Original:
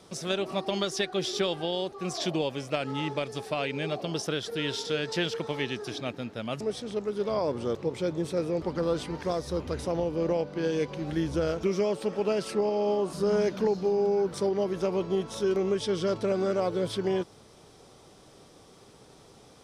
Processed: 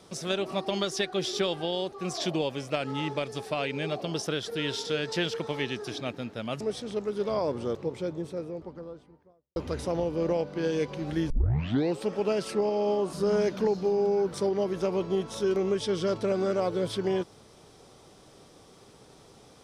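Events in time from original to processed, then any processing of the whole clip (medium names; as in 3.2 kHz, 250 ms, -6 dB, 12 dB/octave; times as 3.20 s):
7.23–9.56 s: studio fade out
11.30 s: tape start 0.71 s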